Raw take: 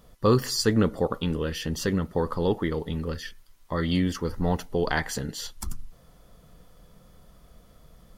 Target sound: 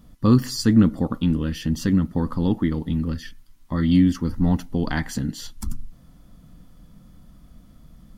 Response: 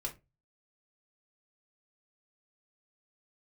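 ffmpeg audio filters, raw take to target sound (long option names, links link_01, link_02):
-af "lowshelf=frequency=340:width_type=q:width=3:gain=6.5,volume=-1.5dB"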